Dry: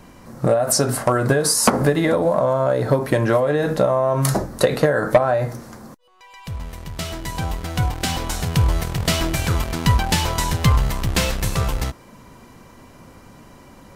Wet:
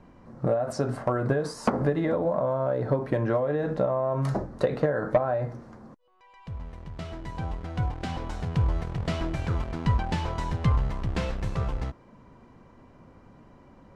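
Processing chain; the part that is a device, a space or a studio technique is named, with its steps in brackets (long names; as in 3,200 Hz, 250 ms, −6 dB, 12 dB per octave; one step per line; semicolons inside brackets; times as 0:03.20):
through cloth (low-pass filter 6,900 Hz 12 dB per octave; high-shelf EQ 2,600 Hz −15.5 dB)
level −7 dB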